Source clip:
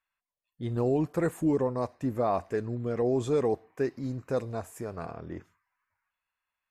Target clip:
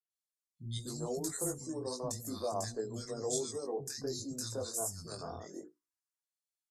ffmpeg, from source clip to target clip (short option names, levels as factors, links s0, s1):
-filter_complex "[0:a]acrossover=split=200|1300[s0][s1][s2];[s2]aexciter=amount=9.8:drive=8.7:freq=3900[s3];[s0][s1][s3]amix=inputs=3:normalize=0,bandreject=f=60:t=h:w=6,bandreject=f=120:t=h:w=6,bandreject=f=180:t=h:w=6,bandreject=f=240:t=h:w=6,bandreject=f=300:t=h:w=6,bandreject=f=360:t=h:w=6,bandreject=f=420:t=h:w=6,bandreject=f=480:t=h:w=6,acompressor=threshold=0.0355:ratio=6,afftdn=nr=21:nf=-51,flanger=delay=18:depth=2.6:speed=2.7,lowpass=9900,acrossover=split=220|1400[s4][s5][s6];[s6]adelay=100[s7];[s5]adelay=240[s8];[s4][s8][s7]amix=inputs=3:normalize=0"